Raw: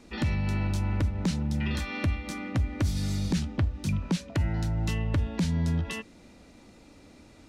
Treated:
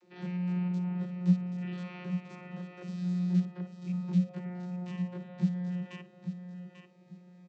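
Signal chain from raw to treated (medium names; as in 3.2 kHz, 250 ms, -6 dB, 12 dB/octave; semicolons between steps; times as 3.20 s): spectrogram pixelated in time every 50 ms; vocoder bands 32, saw 179 Hz; feedback delay 842 ms, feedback 27%, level -9 dB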